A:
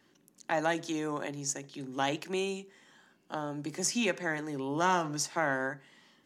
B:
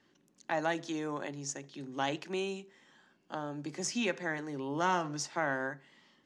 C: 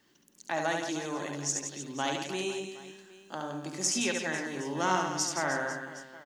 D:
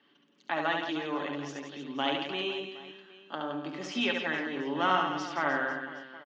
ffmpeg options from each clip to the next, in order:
-af "lowpass=6.6k,volume=-2.5dB"
-filter_complex "[0:a]aemphasis=mode=production:type=50fm,asplit=2[a][b];[b]aecho=0:1:70|168|305.2|497.3|766.2:0.631|0.398|0.251|0.158|0.1[c];[a][c]amix=inputs=2:normalize=0"
-af "highpass=220,equalizer=f=230:t=q:w=4:g=5,equalizer=f=1.2k:t=q:w=4:g=5,equalizer=f=3.1k:t=q:w=4:g=7,lowpass=f=3.6k:w=0.5412,lowpass=f=3.6k:w=1.3066,aecho=1:1:7:0.43"

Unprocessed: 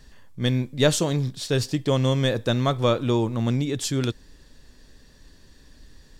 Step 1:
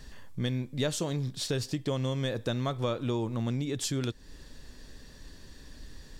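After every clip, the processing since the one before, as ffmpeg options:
-af "acompressor=threshold=-34dB:ratio=3,volume=2.5dB"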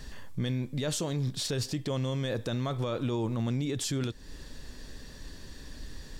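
-af "alimiter=level_in=3.5dB:limit=-24dB:level=0:latency=1:release=28,volume=-3.5dB,volume=4dB"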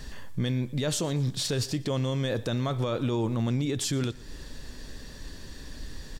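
-af "aecho=1:1:118|236|354:0.0841|0.0345|0.0141,volume=3dB"

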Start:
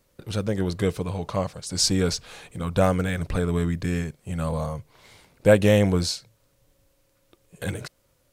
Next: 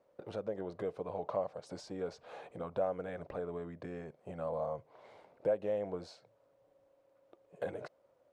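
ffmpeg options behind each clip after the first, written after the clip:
-af "acompressor=threshold=-31dB:ratio=5,bandpass=f=630:t=q:w=2:csg=0,volume=4dB"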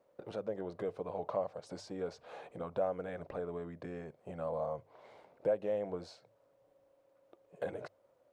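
-af "bandreject=f=50:t=h:w=6,bandreject=f=100:t=h:w=6"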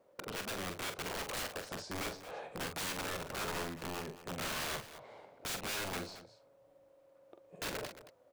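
-af "aeval=exprs='(mod(70.8*val(0)+1,2)-1)/70.8':c=same,aecho=1:1:44|223:0.447|0.2,volume=3dB"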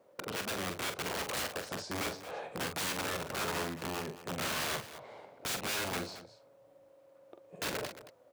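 -af "highpass=68,volume=3.5dB"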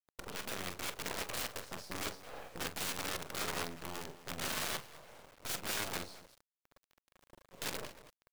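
-af "acrusher=bits=6:dc=4:mix=0:aa=0.000001,volume=-2.5dB"

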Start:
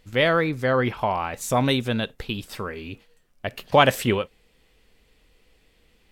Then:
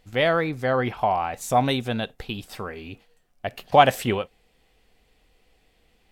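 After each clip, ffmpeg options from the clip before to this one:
-af "equalizer=f=740:w=4.7:g=9,volume=-2.5dB"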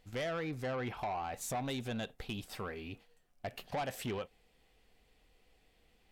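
-af "acompressor=threshold=-25dB:ratio=3,asoftclip=type=tanh:threshold=-26dB,volume=-6dB"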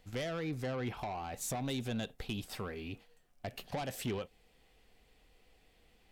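-filter_complex "[0:a]acrossover=split=440|3000[a][b][c];[b]acompressor=threshold=-54dB:ratio=1.5[d];[a][d][c]amix=inputs=3:normalize=0,volume=2.5dB"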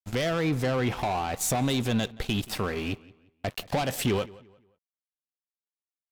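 -filter_complex "[0:a]asplit=2[a][b];[b]alimiter=level_in=8.5dB:limit=-24dB:level=0:latency=1:release=27,volume=-8.5dB,volume=0dB[c];[a][c]amix=inputs=2:normalize=0,aeval=exprs='sgn(val(0))*max(abs(val(0))-0.00447,0)':c=same,asplit=2[d][e];[e]adelay=176,lowpass=f=3.7k:p=1,volume=-21dB,asplit=2[f][g];[g]adelay=176,lowpass=f=3.7k:p=1,volume=0.34,asplit=2[h][i];[i]adelay=176,lowpass=f=3.7k:p=1,volume=0.34[j];[d][f][h][j]amix=inputs=4:normalize=0,volume=8dB"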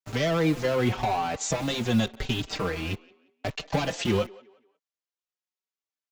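-filter_complex "[0:a]aresample=16000,aresample=44100,acrossover=split=240|1600[a][b][c];[a]acrusher=bits=6:mix=0:aa=0.000001[d];[d][b][c]amix=inputs=3:normalize=0,asplit=2[e][f];[f]adelay=4.8,afreqshift=0.87[g];[e][g]amix=inputs=2:normalize=1,volume=4dB"

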